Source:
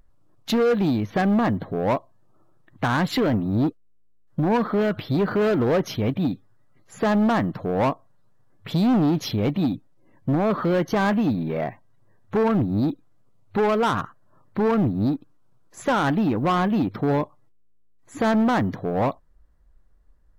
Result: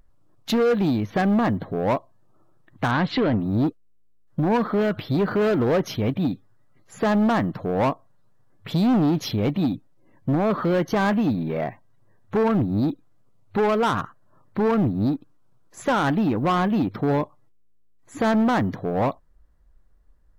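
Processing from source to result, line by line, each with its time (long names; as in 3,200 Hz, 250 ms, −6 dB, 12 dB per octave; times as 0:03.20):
0:02.91–0:03.40: low-pass filter 4,500 Hz 24 dB per octave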